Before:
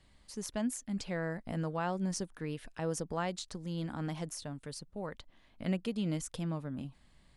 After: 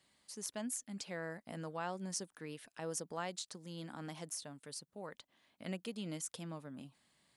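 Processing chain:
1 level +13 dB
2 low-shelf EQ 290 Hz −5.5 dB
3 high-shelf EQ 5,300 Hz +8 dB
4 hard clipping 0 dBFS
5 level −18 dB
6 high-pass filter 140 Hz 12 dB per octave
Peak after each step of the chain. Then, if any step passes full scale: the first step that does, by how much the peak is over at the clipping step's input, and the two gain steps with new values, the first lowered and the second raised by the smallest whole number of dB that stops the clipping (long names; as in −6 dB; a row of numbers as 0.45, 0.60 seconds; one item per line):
−7.5, −7.5, −2.5, −2.5, −20.5, −20.5 dBFS
no step passes full scale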